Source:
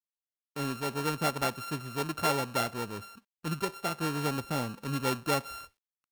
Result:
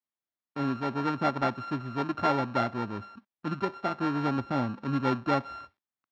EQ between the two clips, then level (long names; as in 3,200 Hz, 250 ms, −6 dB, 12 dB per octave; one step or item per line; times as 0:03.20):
loudspeaker in its box 140–4,500 Hz, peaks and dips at 160 Hz −10 dB, 460 Hz −10 dB, 2,800 Hz −7 dB, 4,200 Hz −4 dB
spectral tilt −2 dB per octave
+4.0 dB